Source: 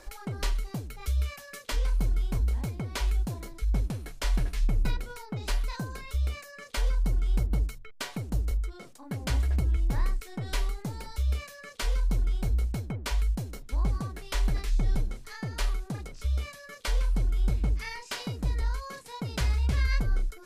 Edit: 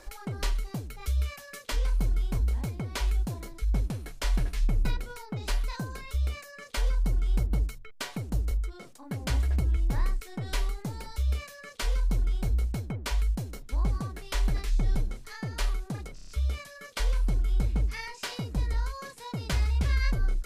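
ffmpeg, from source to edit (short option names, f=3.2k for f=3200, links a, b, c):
-filter_complex "[0:a]asplit=5[a][b][c][d][e];[a]atrim=end=16.182[f];[b]atrim=start=16.148:end=16.182[g];[c]atrim=start=16.148:end=16.182[h];[d]atrim=start=16.148:end=16.182[i];[e]atrim=start=16.148[j];[f][g]acrossfade=d=0.004:c1=hsin:c2=hsin[k];[k][h]acrossfade=d=0.004:c1=hsin:c2=hsin[l];[l][i]acrossfade=d=0.004:c1=hsin:c2=hsin[m];[m][j]acrossfade=d=0.004:c1=hsin:c2=hsin"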